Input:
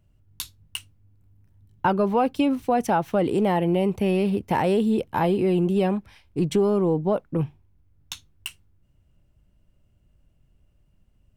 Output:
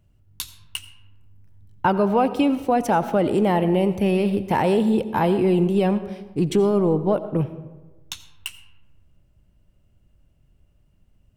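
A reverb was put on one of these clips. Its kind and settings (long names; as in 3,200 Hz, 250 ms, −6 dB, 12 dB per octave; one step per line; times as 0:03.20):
comb and all-pass reverb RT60 1.2 s, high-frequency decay 0.45×, pre-delay 45 ms, DRR 12.5 dB
level +2 dB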